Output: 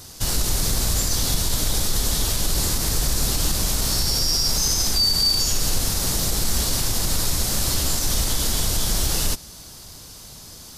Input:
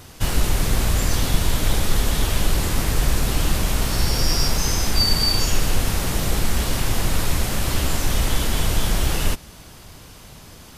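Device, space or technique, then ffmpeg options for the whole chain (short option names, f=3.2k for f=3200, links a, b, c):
over-bright horn tweeter: -af "highshelf=f=3.5k:t=q:w=1.5:g=8,alimiter=limit=-8.5dB:level=0:latency=1:release=52,volume=-2.5dB"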